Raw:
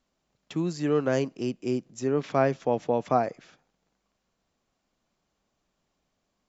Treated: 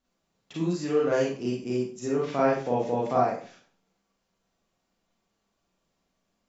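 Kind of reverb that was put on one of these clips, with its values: Schroeder reverb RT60 0.41 s, combs from 33 ms, DRR -5.5 dB; trim -6 dB

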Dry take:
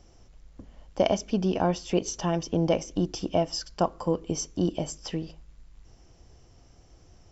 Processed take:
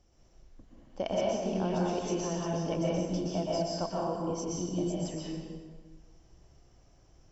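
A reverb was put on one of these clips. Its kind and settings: plate-style reverb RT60 1.6 s, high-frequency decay 0.65×, pre-delay 110 ms, DRR -5 dB; trim -11 dB

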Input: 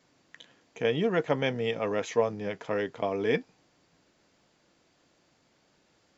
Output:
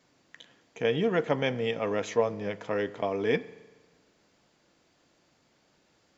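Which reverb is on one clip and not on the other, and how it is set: spring tank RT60 1.2 s, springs 39 ms, chirp 45 ms, DRR 17 dB

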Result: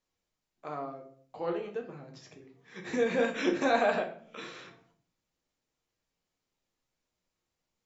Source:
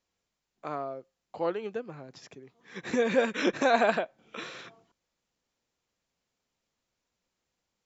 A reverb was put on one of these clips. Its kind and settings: simulated room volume 59 m³, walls mixed, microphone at 0.54 m; trim -5 dB

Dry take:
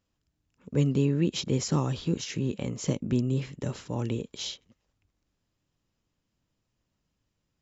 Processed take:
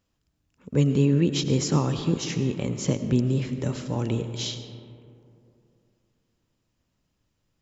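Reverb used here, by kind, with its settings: algorithmic reverb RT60 2.7 s, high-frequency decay 0.35×, pre-delay 60 ms, DRR 9 dB; trim +3.5 dB

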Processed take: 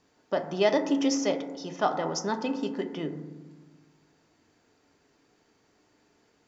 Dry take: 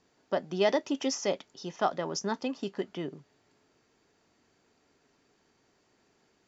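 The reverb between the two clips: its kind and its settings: FDN reverb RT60 1.3 s, low-frequency decay 1.45×, high-frequency decay 0.25×, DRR 6 dB; trim +1.5 dB

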